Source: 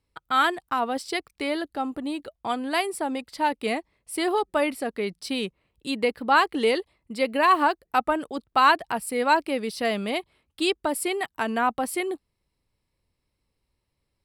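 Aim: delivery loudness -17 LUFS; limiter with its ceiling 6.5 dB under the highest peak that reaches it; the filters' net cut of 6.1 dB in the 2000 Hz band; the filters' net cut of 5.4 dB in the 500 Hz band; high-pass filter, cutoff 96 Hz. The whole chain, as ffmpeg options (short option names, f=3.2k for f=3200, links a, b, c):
-af "highpass=96,equalizer=f=500:t=o:g=-6.5,equalizer=f=2k:t=o:g=-8,volume=13.5dB,alimiter=limit=-3dB:level=0:latency=1"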